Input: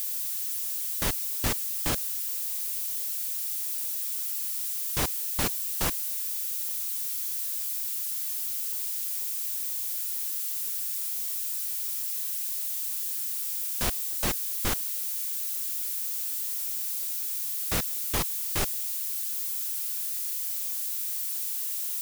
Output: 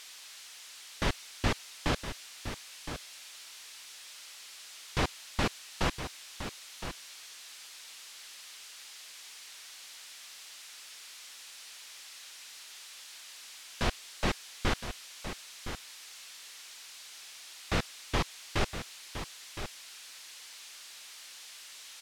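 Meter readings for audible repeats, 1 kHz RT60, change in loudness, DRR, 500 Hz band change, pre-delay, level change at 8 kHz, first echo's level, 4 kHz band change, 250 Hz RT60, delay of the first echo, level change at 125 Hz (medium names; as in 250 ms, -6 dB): 1, no reverb, -11.5 dB, no reverb, +1.5 dB, no reverb, -13.0 dB, -10.0 dB, -2.5 dB, no reverb, 1015 ms, +1.5 dB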